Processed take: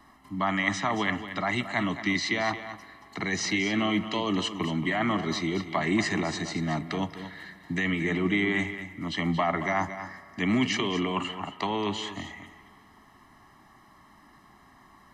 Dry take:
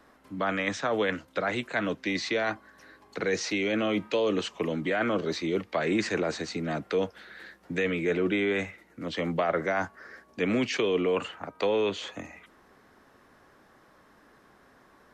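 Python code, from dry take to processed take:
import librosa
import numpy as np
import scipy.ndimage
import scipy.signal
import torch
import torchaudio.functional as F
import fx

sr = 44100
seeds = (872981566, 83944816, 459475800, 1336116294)

p1 = x + 0.94 * np.pad(x, (int(1.0 * sr / 1000.0), 0))[:len(x)]
p2 = p1 + fx.echo_single(p1, sr, ms=226, db=-11.5, dry=0)
y = fx.rev_spring(p2, sr, rt60_s=2.3, pass_ms=(43, 58), chirp_ms=25, drr_db=16.5)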